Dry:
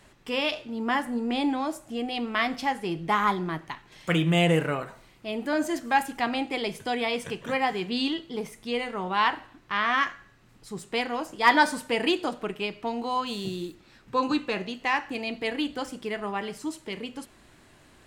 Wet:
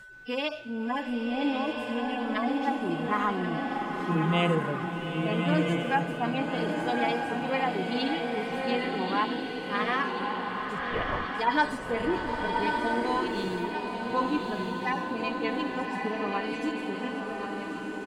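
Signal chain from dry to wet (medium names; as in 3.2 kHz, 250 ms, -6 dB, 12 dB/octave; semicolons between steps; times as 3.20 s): harmonic-percussive separation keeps harmonic; in parallel at +2 dB: compression, threshold -35 dBFS, peak gain reduction 18.5 dB; 10.79–11.35 s: on the sum: LPC vocoder at 8 kHz whisper; whistle 1.5 kHz -41 dBFS; on a send: feedback delay 1083 ms, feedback 60%, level -10.5 dB; on the sum: swelling reverb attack 1320 ms, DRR 1.5 dB; trim -5.5 dB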